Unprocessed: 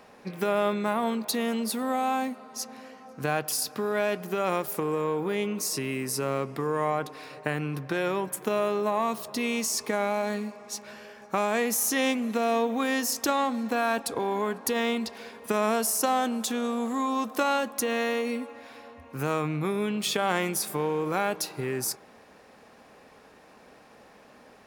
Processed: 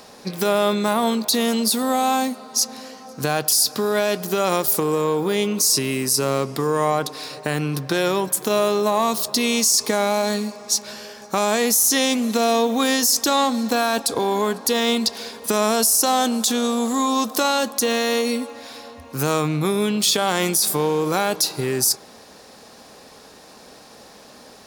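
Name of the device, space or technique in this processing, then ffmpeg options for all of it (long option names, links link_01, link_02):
over-bright horn tweeter: -af "highshelf=frequency=3200:width_type=q:width=1.5:gain=8.5,alimiter=limit=-15.5dB:level=0:latency=1:release=29,volume=7.5dB"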